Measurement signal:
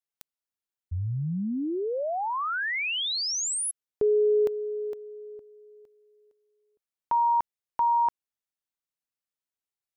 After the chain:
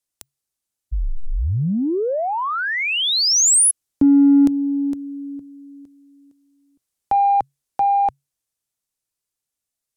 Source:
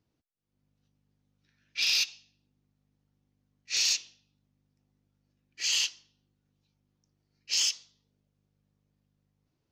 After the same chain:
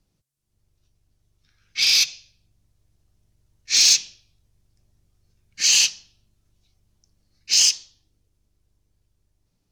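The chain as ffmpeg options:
-filter_complex "[0:a]equalizer=f=9k:t=o:w=2.3:g=14.5,afreqshift=-140,tiltshelf=f=840:g=5,dynaudnorm=f=140:g=31:m=3dB,asplit=2[a][b];[b]asoftclip=type=tanh:threshold=-19dB,volume=-9.5dB[c];[a][c]amix=inputs=2:normalize=0,volume=1.5dB"

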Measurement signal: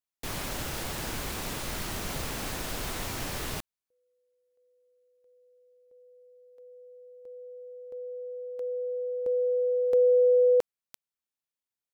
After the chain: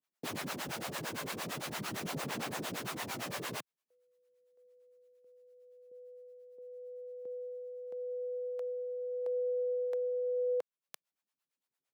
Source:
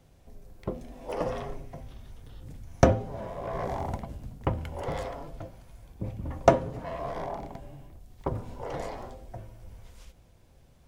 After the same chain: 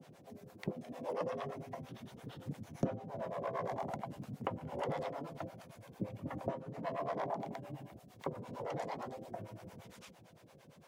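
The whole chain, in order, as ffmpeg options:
-filter_complex "[0:a]highpass=f=140:w=0.5412,highpass=f=140:w=1.3066,highshelf=f=4k:g=-6,acompressor=threshold=-43dB:ratio=2.5:attack=5.6:release=408:knee=6:detection=peak,acrossover=split=490[a][b];[a]aeval=exprs='val(0)*(1-1/2+1/2*cos(2*PI*8.8*n/s))':c=same[c];[b]aeval=exprs='val(0)*(1-1/2-1/2*cos(2*PI*8.8*n/s))':c=same[d];[c][d]amix=inputs=2:normalize=0,aphaser=in_gain=1:out_gain=1:delay=1.9:decay=0.2:speed=0.42:type=sinusoidal,volume=9dB"

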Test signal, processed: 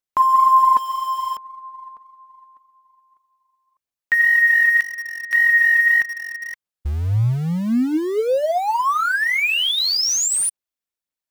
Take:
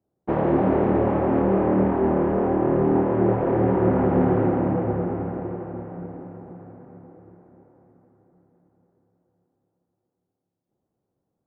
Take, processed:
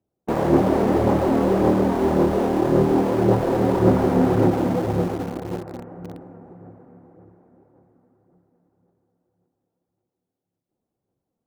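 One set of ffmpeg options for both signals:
-filter_complex "[0:a]aphaser=in_gain=1:out_gain=1:delay=4.5:decay=0.35:speed=1.8:type=sinusoidal,asplit=2[a][b];[b]aeval=exprs='val(0)*gte(abs(val(0)),0.0596)':c=same,volume=-5dB[c];[a][c]amix=inputs=2:normalize=0,volume=-3dB"

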